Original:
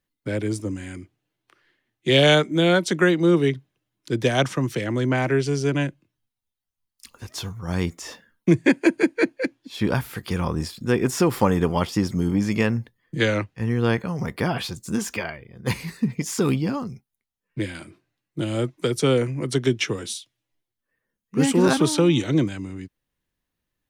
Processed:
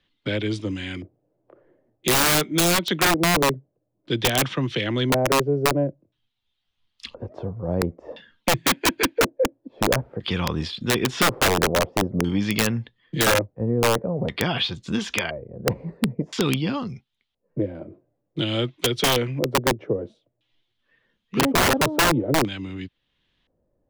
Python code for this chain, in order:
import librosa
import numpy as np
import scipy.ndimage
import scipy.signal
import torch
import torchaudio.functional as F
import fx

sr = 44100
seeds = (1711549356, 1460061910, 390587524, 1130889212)

y = fx.filter_lfo_lowpass(x, sr, shape='square', hz=0.49, low_hz=570.0, high_hz=3400.0, q=3.7)
y = (np.mod(10.0 ** (10.0 / 20.0) * y + 1.0, 2.0) - 1.0) / 10.0 ** (10.0 / 20.0)
y = fx.band_squash(y, sr, depth_pct=40)
y = y * 10.0 ** (-2.0 / 20.0)